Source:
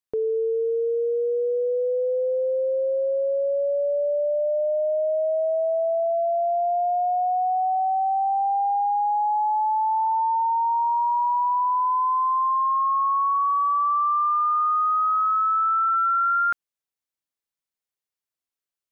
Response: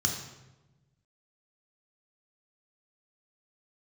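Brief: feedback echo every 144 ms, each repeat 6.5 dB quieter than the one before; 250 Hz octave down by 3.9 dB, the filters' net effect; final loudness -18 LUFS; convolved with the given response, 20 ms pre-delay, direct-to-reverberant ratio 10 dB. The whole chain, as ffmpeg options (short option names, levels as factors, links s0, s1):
-filter_complex "[0:a]equalizer=f=250:t=o:g=-8,aecho=1:1:144|288|432|576|720|864:0.473|0.222|0.105|0.0491|0.0231|0.0109,asplit=2[s0][s1];[1:a]atrim=start_sample=2205,adelay=20[s2];[s1][s2]afir=irnorm=-1:irlink=0,volume=0.141[s3];[s0][s3]amix=inputs=2:normalize=0,volume=1.5"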